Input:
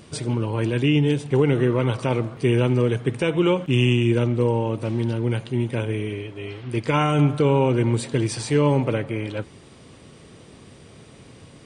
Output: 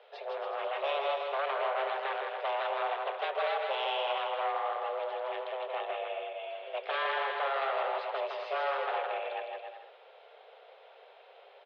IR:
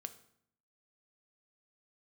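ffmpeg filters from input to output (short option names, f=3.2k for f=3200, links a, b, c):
-af "aeval=exprs='0.133*(abs(mod(val(0)/0.133+3,4)-2)-1)':c=same,highpass=f=200:t=q:w=0.5412,highpass=f=200:t=q:w=1.307,lowpass=f=3.4k:t=q:w=0.5176,lowpass=f=3.4k:t=q:w=0.7071,lowpass=f=3.4k:t=q:w=1.932,afreqshift=270,aecho=1:1:160|280|370|437.5|488.1:0.631|0.398|0.251|0.158|0.1,volume=-8.5dB"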